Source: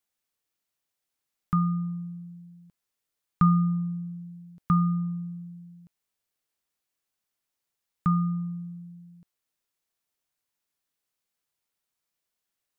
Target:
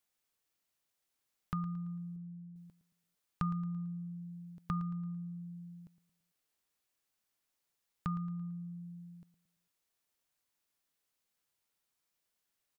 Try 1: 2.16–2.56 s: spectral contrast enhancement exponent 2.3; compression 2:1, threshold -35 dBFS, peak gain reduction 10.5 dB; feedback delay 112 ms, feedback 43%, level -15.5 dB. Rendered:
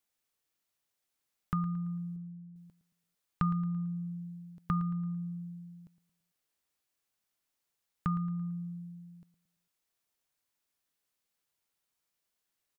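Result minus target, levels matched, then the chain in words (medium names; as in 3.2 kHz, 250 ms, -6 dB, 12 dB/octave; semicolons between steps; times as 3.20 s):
compression: peak gain reduction -5 dB
2.16–2.56 s: spectral contrast enhancement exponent 2.3; compression 2:1, threshold -44.5 dBFS, peak gain reduction 15 dB; feedback delay 112 ms, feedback 43%, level -15.5 dB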